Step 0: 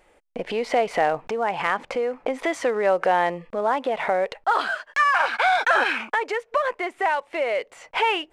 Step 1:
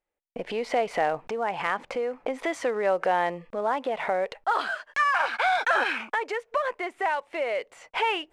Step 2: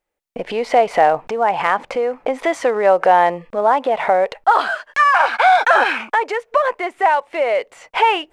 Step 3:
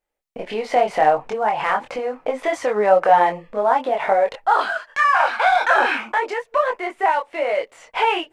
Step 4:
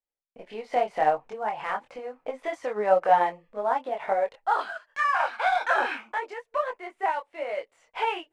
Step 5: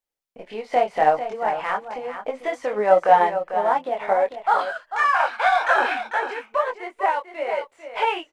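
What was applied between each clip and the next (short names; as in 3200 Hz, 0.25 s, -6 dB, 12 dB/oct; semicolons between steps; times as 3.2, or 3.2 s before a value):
gate -46 dBFS, range -25 dB; gain -4 dB
dynamic EQ 790 Hz, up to +6 dB, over -35 dBFS, Q 1.1; gain +7 dB
chorus voices 6, 0.7 Hz, delay 24 ms, depth 4.9 ms
upward expander 1.5:1, over -34 dBFS; gain -5 dB
echo 0.446 s -10 dB; gain +5 dB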